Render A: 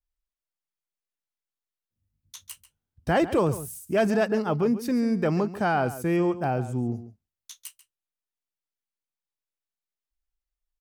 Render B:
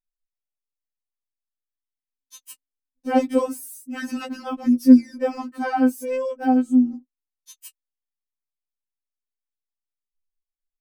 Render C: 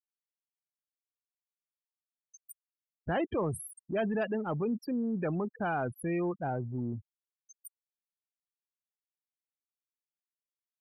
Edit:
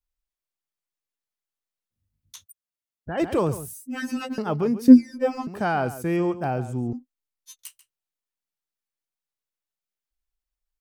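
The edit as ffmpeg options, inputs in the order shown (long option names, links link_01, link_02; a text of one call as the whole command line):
ffmpeg -i take0.wav -i take1.wav -i take2.wav -filter_complex "[1:a]asplit=3[link_01][link_02][link_03];[0:a]asplit=5[link_04][link_05][link_06][link_07][link_08];[link_04]atrim=end=2.46[link_09];[2:a]atrim=start=2.42:end=3.21[link_10];[link_05]atrim=start=3.17:end=3.732[link_11];[link_01]atrim=start=3.728:end=4.382[link_12];[link_06]atrim=start=4.378:end=4.882[link_13];[link_02]atrim=start=4.878:end=5.472[link_14];[link_07]atrim=start=5.468:end=6.932[link_15];[link_03]atrim=start=6.928:end=7.592[link_16];[link_08]atrim=start=7.588[link_17];[link_09][link_10]acrossfade=duration=0.04:curve1=tri:curve2=tri[link_18];[link_18][link_11]acrossfade=duration=0.04:curve1=tri:curve2=tri[link_19];[link_19][link_12]acrossfade=duration=0.004:curve1=hsin:curve2=hsin[link_20];[link_20][link_13]acrossfade=duration=0.004:curve1=hsin:curve2=hsin[link_21];[link_21][link_14]acrossfade=duration=0.004:curve1=hsin:curve2=hsin[link_22];[link_22][link_15]acrossfade=duration=0.004:curve1=hsin:curve2=hsin[link_23];[link_23][link_16]acrossfade=duration=0.004:curve1=hsin:curve2=hsin[link_24];[link_24][link_17]acrossfade=duration=0.004:curve1=hsin:curve2=hsin" out.wav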